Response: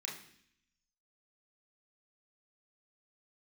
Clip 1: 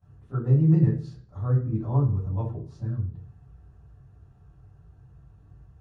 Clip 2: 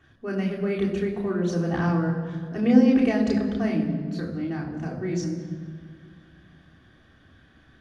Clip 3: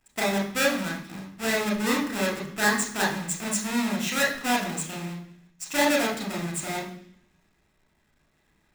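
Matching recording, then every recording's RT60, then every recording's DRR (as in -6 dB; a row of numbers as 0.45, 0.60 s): 3; 0.50, 2.0, 0.65 s; -17.5, -5.5, -2.5 dB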